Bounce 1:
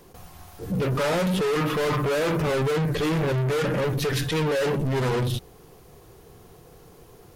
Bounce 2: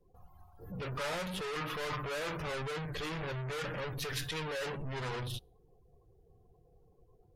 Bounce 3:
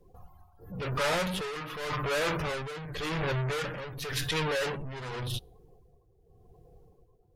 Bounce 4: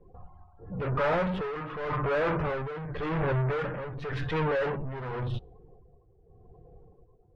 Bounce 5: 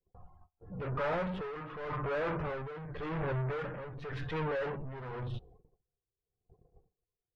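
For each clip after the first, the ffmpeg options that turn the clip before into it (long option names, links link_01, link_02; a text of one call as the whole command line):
ffmpeg -i in.wav -af "afftdn=noise_reduction=27:noise_floor=-47,equalizer=frequency=260:width_type=o:width=2.7:gain=-11,volume=-7.5dB" out.wav
ffmpeg -i in.wav -af "tremolo=f=0.9:d=0.69,volume=8.5dB" out.wav
ffmpeg -i in.wav -af "lowpass=1500,volume=3.5dB" out.wav
ffmpeg -i in.wav -af "agate=range=-27dB:threshold=-50dB:ratio=16:detection=peak,volume=-6.5dB" out.wav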